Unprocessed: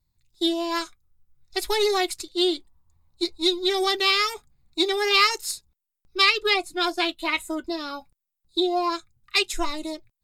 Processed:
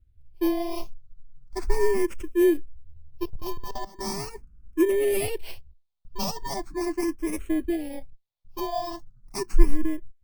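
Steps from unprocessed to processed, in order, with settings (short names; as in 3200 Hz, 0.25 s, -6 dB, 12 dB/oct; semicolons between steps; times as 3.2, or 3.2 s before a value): FFT order left unsorted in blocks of 32 samples; tilt -4 dB/oct; 3.23–3.99 level quantiser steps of 20 dB; endless phaser +0.39 Hz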